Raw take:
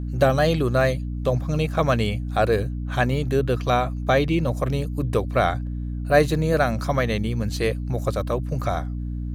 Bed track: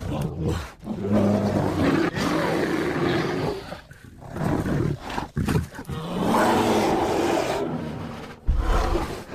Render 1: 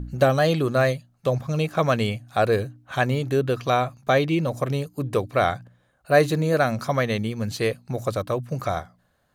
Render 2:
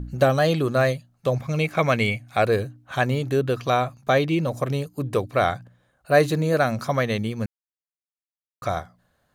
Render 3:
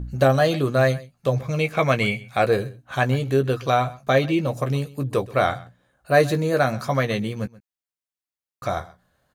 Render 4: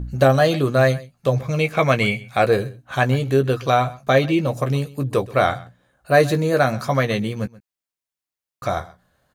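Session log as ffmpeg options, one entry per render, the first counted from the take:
-af "bandreject=f=60:t=h:w=4,bandreject=f=120:t=h:w=4,bandreject=f=180:t=h:w=4,bandreject=f=240:t=h:w=4,bandreject=f=300:t=h:w=4"
-filter_complex "[0:a]asettb=1/sr,asplit=3[a][b][c];[a]atrim=end=1.384[d];[b]atrim=start=1.38:end=2.44,asetpts=PTS-STARTPTS,afade=t=in:d=0.004:c=qsin,afade=t=out:st=1.056:d=0.004:c=qsin,equalizer=f=2.2k:w=5:g=12[e];[c]atrim=start=2.436[f];[d][e]acrossfade=d=0.004:c1=hsin:c2=qsin[g];[g][f]acrossfade=d=0.004:c1=qsin:c2=hsin,asplit=3[h][i][j];[h]atrim=end=7.46,asetpts=PTS-STARTPTS,afade=t=out:st=7.456:d=0.004:c=hsin[k];[i]atrim=start=7.46:end=8.62,asetpts=PTS-STARTPTS,volume=0[l];[j]atrim=start=8.62,asetpts=PTS-STARTPTS,afade=t=in:d=0.004:c=hsin[m];[k][l][m]concat=n=3:v=0:a=1"
-filter_complex "[0:a]asplit=2[a][b];[b]adelay=15,volume=-8dB[c];[a][c]amix=inputs=2:normalize=0,aecho=1:1:129:0.0944"
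-af "volume=2.5dB,alimiter=limit=-3dB:level=0:latency=1"

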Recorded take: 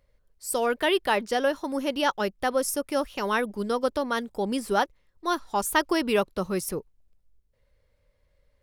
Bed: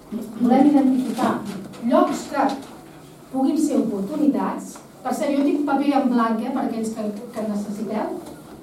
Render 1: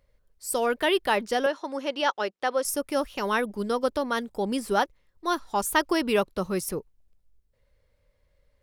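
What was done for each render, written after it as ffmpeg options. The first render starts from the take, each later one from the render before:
-filter_complex "[0:a]asettb=1/sr,asplit=3[a][b][c];[a]atrim=end=1.464[d];[b]atrim=start=1.46:end=2.65,asetpts=PTS-STARTPTS,afade=t=in:d=0.004:c=qsin,afade=t=out:st=1.186:d=0.004:c=qsin,highpass=370,lowpass=6.2k[e];[c]atrim=start=2.646[f];[d][e]acrossfade=d=0.004:c1=hsin:c2=qsin[g];[g][f]acrossfade=d=0.004:c1=qsin:c2=hsin"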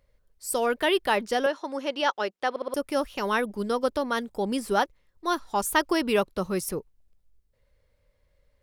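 -filter_complex "[0:a]asplit=5[a][b][c][d][e];[a]atrim=end=2.562[f];[b]atrim=start=2.498:end=2.562[g];[c]atrim=start=2.498:end=2.562[h];[d]atrim=start=2.498:end=2.562[i];[e]atrim=start=2.738[j];[f][g]acrossfade=d=0.004:c1=hsin:c2=hsin[k];[k][h]acrossfade=d=0.004:c1=hsin:c2=hsin[l];[l][i]acrossfade=d=0.004:c1=hsin:c2=hsin[m];[m][j]acrossfade=d=0.004:c1=hsin:c2=hsin"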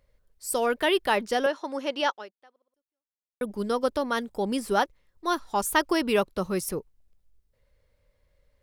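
-filter_complex "[0:a]asplit=2[a][b];[a]atrim=end=3.41,asetpts=PTS-STARTPTS,afade=t=out:st=2.06:d=1.35:c=exp[c];[b]atrim=start=3.41,asetpts=PTS-STARTPTS,afade=t=in:d=0.004:c=hsin[d];[c][d]concat=n=2:v=0:a=1"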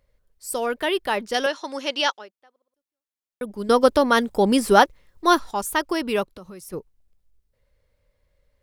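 -filter_complex "[0:a]asettb=1/sr,asplit=3[a][b][c];[a]atrim=end=1.344[d];[b]atrim=start=1.34:end=2.19,asetpts=PTS-STARTPTS,afade=t=in:d=0.004:c=qsin,afade=t=out:st=0.846:d=0.004:c=qsin,equalizer=f=5.2k:t=o:w=2.8:g=10.5[e];[c]atrim=start=2.186[f];[d][e]acrossfade=d=0.004:c1=hsin:c2=qsin[g];[g][f]acrossfade=d=0.004:c1=qsin:c2=hsin,asplit=3[h][i][j];[h]afade=t=out:st=6.26:d=0.02[k];[i]acompressor=threshold=-38dB:ratio=5:attack=3.2:release=140:knee=1:detection=peak,afade=t=in:st=6.26:d=0.02,afade=t=out:st=6.72:d=0.02[l];[j]afade=t=in:st=6.72:d=0.02[m];[k][l][m]amix=inputs=3:normalize=0,asplit=3[n][o][p];[n]atrim=end=3.692[q];[o]atrim=start=3.688:end=5.512,asetpts=PTS-STARTPTS,volume=9.5dB[r];[p]atrim=start=5.508[s];[q][r]acrossfade=d=0.004:c1=hsin:c2=hsin[t];[t][s]acrossfade=d=0.004:c1=hsin:c2=hsin"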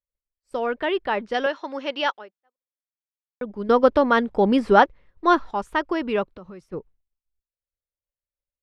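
-af "lowpass=2.5k,agate=range=-33dB:threshold=-45dB:ratio=3:detection=peak"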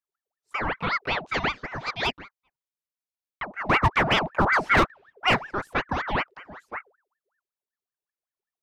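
-af "volume=11.5dB,asoftclip=hard,volume=-11.5dB,aeval=exprs='val(0)*sin(2*PI*1100*n/s+1100*0.65/5.3*sin(2*PI*5.3*n/s))':c=same"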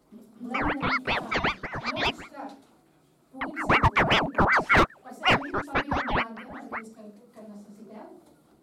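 -filter_complex "[1:a]volume=-19.5dB[a];[0:a][a]amix=inputs=2:normalize=0"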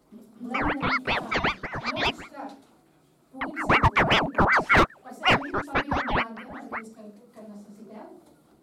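-af "volume=1dB"

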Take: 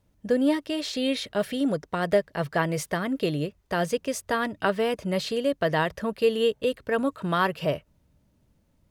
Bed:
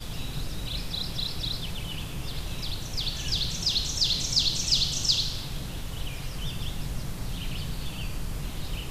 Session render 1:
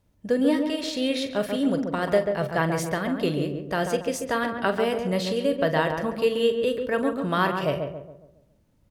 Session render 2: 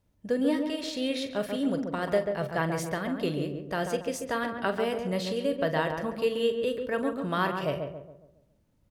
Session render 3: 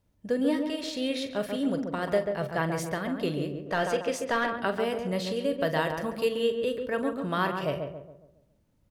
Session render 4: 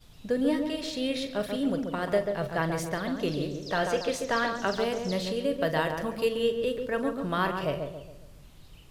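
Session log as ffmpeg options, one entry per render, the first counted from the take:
-filter_complex "[0:a]asplit=2[a][b];[b]adelay=43,volume=-11dB[c];[a][c]amix=inputs=2:normalize=0,asplit=2[d][e];[e]adelay=138,lowpass=f=1.3k:p=1,volume=-4.5dB,asplit=2[f][g];[g]adelay=138,lowpass=f=1.3k:p=1,volume=0.45,asplit=2[h][i];[i]adelay=138,lowpass=f=1.3k:p=1,volume=0.45,asplit=2[j][k];[k]adelay=138,lowpass=f=1.3k:p=1,volume=0.45,asplit=2[l][m];[m]adelay=138,lowpass=f=1.3k:p=1,volume=0.45,asplit=2[n][o];[o]adelay=138,lowpass=f=1.3k:p=1,volume=0.45[p];[f][h][j][l][n][p]amix=inputs=6:normalize=0[q];[d][q]amix=inputs=2:normalize=0"
-af "volume=-4.5dB"
-filter_complex "[0:a]asettb=1/sr,asplit=3[a][b][c];[a]atrim=end=3.664[d];[b]atrim=start=3.66:end=4.56,asetpts=PTS-STARTPTS,afade=t=in:d=0.004:c=qsin,afade=t=out:st=0.896:d=0.004:c=qsin,asplit=2[e][f];[f]highpass=f=720:p=1,volume=14dB,asoftclip=type=tanh:threshold=-16dB[g];[e][g]amix=inputs=2:normalize=0,lowpass=f=2.7k:p=1,volume=-6dB[h];[c]atrim=start=4.556[i];[d][h]acrossfade=d=0.004:c1=hsin:c2=qsin[j];[j][i]acrossfade=d=0.004:c1=qsin:c2=hsin,asettb=1/sr,asplit=3[k][l][m];[k]atrim=end=5.604[n];[l]atrim=start=5.6:end=6.29,asetpts=PTS-STARTPTS,afade=t=in:d=0.004:c=qsin,afade=t=out:st=0.686:d=0.004:c=qsin,highshelf=f=5k:g=7.5[o];[m]atrim=start=6.286[p];[n][o]acrossfade=d=0.004:c1=hsin:c2=qsin[q];[q][p]acrossfade=d=0.004:c1=qsin:c2=hsin"
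-filter_complex "[1:a]volume=-18.5dB[a];[0:a][a]amix=inputs=2:normalize=0"

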